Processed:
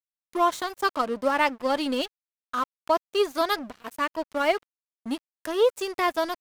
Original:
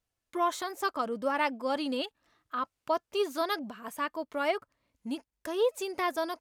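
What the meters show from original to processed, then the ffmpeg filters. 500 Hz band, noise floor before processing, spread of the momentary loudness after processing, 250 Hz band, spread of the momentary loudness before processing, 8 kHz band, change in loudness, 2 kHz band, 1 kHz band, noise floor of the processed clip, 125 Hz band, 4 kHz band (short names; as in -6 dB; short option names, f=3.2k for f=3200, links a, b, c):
+5.5 dB, under -85 dBFS, 11 LU, +5.0 dB, 9 LU, +3.5 dB, +6.0 dB, +6.0 dB, +6.0 dB, under -85 dBFS, n/a, +6.0 dB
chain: -af "aeval=exprs='sgn(val(0))*max(abs(val(0))-0.00631,0)':c=same,volume=7dB"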